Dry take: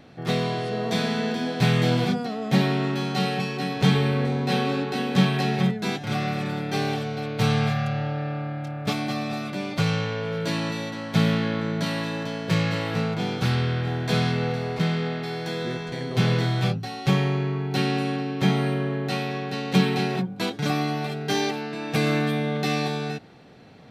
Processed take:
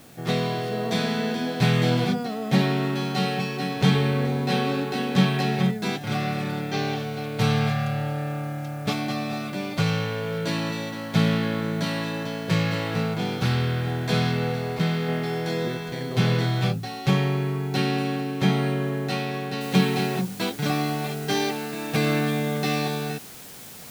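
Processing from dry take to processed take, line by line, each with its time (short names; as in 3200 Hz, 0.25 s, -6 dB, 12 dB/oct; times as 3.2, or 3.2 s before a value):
6.66–7.34 elliptic low-pass 6900 Hz
15.06–15.68 doubler 24 ms -5 dB
19.61 noise floor step -54 dB -43 dB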